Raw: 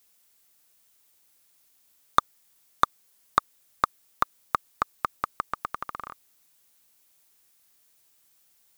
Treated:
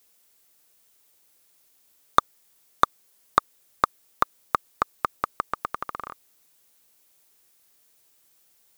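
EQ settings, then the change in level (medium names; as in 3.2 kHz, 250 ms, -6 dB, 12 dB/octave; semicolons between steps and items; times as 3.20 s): peaking EQ 450 Hz +4.5 dB 1.2 oct; +1.5 dB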